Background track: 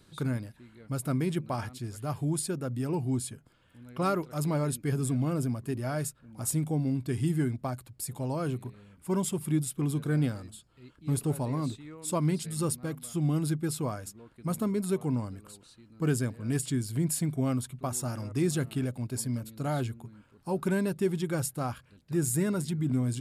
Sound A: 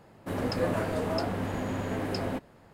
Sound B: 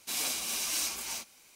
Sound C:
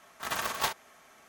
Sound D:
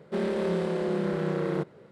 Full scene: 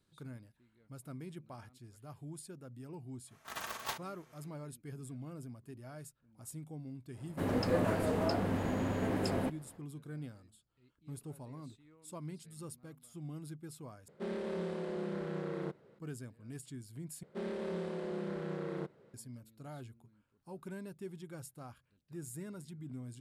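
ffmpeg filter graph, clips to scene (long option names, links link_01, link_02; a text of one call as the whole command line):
ffmpeg -i bed.wav -i cue0.wav -i cue1.wav -i cue2.wav -i cue3.wav -filter_complex "[4:a]asplit=2[link_01][link_02];[0:a]volume=-17dB[link_03];[1:a]equalizer=frequency=230:width_type=o:width=2.5:gain=3[link_04];[link_03]asplit=3[link_05][link_06][link_07];[link_05]atrim=end=14.084[link_08];[link_01]atrim=end=1.91,asetpts=PTS-STARTPTS,volume=-10.5dB[link_09];[link_06]atrim=start=15.986:end=17.234[link_10];[link_02]atrim=end=1.91,asetpts=PTS-STARTPTS,volume=-11dB[link_11];[link_07]atrim=start=19.136[link_12];[3:a]atrim=end=1.28,asetpts=PTS-STARTPTS,volume=-9.5dB,afade=type=in:duration=0.1,afade=type=out:start_time=1.18:duration=0.1,adelay=143325S[link_13];[link_04]atrim=end=2.73,asetpts=PTS-STARTPTS,volume=-4dB,afade=type=in:duration=0.1,afade=type=out:start_time=2.63:duration=0.1,adelay=7110[link_14];[link_08][link_09]acrossfade=duration=0.004:curve1=hsin:curve2=hsin[link_15];[link_15][link_10]acrossfade=duration=0.004:curve1=hsin:curve2=hsin[link_16];[link_16][link_11]acrossfade=duration=0.004:curve1=hsin:curve2=hsin[link_17];[link_17][link_12]acrossfade=duration=0.004:curve1=hsin:curve2=hsin[link_18];[link_18][link_13][link_14]amix=inputs=3:normalize=0" out.wav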